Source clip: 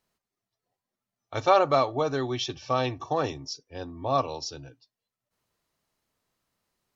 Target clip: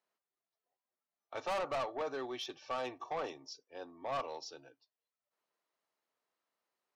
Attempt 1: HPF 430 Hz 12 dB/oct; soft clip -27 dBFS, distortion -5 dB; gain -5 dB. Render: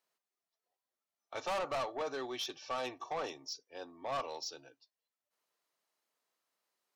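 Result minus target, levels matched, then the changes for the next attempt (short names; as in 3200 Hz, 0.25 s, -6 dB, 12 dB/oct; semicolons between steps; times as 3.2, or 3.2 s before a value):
8000 Hz band +5.5 dB
add after HPF: high shelf 3700 Hz -10.5 dB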